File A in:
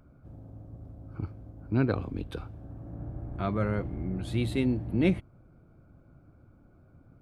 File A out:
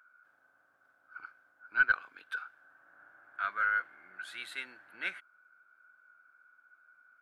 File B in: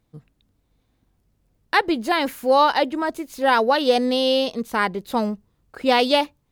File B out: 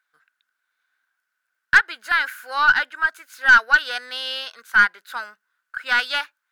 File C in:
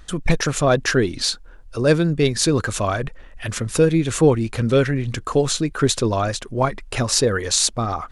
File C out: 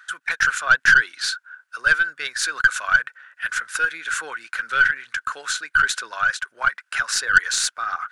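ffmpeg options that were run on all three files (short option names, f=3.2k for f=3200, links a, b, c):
-af "highpass=f=1.5k:t=q:w=14,aeval=exprs='1.78*(cos(1*acos(clip(val(0)/1.78,-1,1)))-cos(1*PI/2))+0.1*(cos(5*acos(clip(val(0)/1.78,-1,1)))-cos(5*PI/2))+0.0794*(cos(6*acos(clip(val(0)/1.78,-1,1)))-cos(6*PI/2))+0.0126*(cos(8*acos(clip(val(0)/1.78,-1,1)))-cos(8*PI/2))':c=same,volume=-6.5dB"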